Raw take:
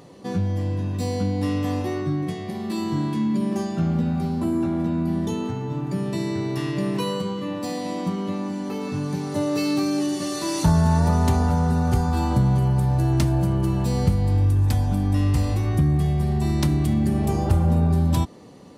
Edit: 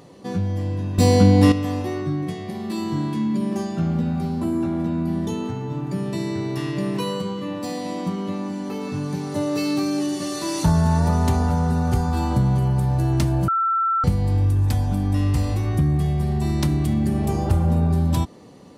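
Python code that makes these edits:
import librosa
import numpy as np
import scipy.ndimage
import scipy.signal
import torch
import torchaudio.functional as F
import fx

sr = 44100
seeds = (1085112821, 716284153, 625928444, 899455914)

y = fx.edit(x, sr, fx.clip_gain(start_s=0.98, length_s=0.54, db=10.5),
    fx.bleep(start_s=13.48, length_s=0.56, hz=1340.0, db=-17.5), tone=tone)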